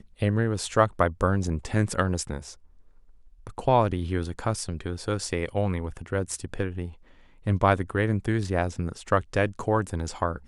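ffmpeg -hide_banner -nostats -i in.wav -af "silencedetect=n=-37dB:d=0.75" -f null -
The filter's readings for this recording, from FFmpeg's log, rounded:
silence_start: 2.53
silence_end: 3.47 | silence_duration: 0.93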